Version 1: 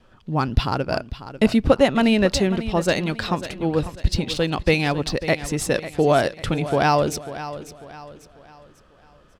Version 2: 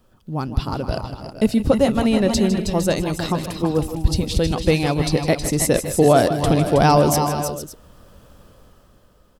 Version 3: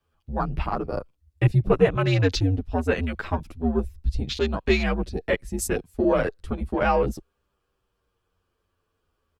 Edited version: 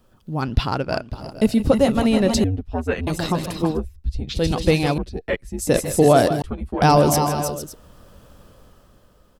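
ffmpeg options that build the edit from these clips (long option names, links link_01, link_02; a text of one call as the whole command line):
ffmpeg -i take0.wav -i take1.wav -i take2.wav -filter_complex "[2:a]asplit=4[link_01][link_02][link_03][link_04];[1:a]asplit=6[link_05][link_06][link_07][link_08][link_09][link_10];[link_05]atrim=end=0.422[link_11];[0:a]atrim=start=0.418:end=1.132[link_12];[link_06]atrim=start=1.128:end=2.442[link_13];[link_01]atrim=start=2.438:end=3.072[link_14];[link_07]atrim=start=3.068:end=3.8[link_15];[link_02]atrim=start=3.7:end=4.43[link_16];[link_08]atrim=start=4.33:end=4.982[link_17];[link_03]atrim=start=4.978:end=5.672[link_18];[link_09]atrim=start=5.668:end=6.422[link_19];[link_04]atrim=start=6.418:end=6.822[link_20];[link_10]atrim=start=6.818[link_21];[link_11][link_12]acrossfade=duration=0.004:curve1=hsin:curve2=hsin[link_22];[link_22][link_13]acrossfade=duration=0.004:curve1=hsin:curve2=hsin[link_23];[link_23][link_14]acrossfade=duration=0.004:curve1=hsin:curve2=hsin[link_24];[link_24][link_15]acrossfade=duration=0.004:curve1=hsin:curve2=hsin[link_25];[link_25][link_16]acrossfade=duration=0.1:curve1=tri:curve2=tri[link_26];[link_26][link_17]acrossfade=duration=0.1:curve1=tri:curve2=tri[link_27];[link_27][link_18]acrossfade=duration=0.004:curve1=hsin:curve2=hsin[link_28];[link_28][link_19]acrossfade=duration=0.004:curve1=hsin:curve2=hsin[link_29];[link_29][link_20]acrossfade=duration=0.004:curve1=hsin:curve2=hsin[link_30];[link_30][link_21]acrossfade=duration=0.004:curve1=hsin:curve2=hsin" out.wav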